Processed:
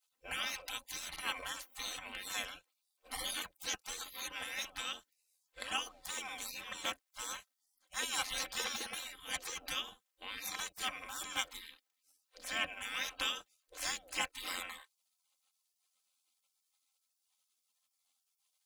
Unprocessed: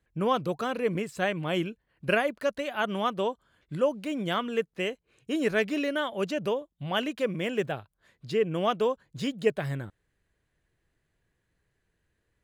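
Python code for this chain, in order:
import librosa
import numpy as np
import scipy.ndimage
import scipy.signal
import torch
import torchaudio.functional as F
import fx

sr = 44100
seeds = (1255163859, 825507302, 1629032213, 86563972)

y = fx.spec_gate(x, sr, threshold_db=-30, keep='weak')
y = fx.stretch_grains(y, sr, factor=1.5, grain_ms=23.0)
y = y * 10.0 ** (11.5 / 20.0)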